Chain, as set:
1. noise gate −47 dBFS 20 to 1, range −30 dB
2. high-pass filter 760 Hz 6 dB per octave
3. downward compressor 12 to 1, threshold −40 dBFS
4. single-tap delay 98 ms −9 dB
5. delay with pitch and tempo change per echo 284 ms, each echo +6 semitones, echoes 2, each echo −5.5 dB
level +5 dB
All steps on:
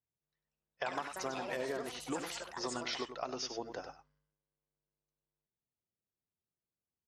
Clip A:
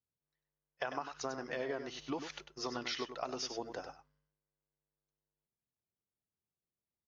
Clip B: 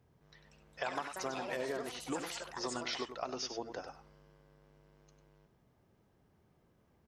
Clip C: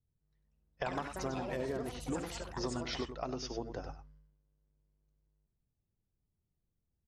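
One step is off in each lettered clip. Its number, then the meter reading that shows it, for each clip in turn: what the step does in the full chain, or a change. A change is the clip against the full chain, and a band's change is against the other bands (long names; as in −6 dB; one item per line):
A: 5, change in momentary loudness spread +1 LU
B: 1, change in momentary loudness spread +4 LU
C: 2, 125 Hz band +12.5 dB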